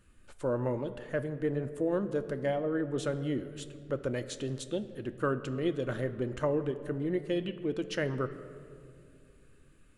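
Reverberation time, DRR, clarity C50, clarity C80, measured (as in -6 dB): 2.4 s, 9.0 dB, 13.0 dB, 14.0 dB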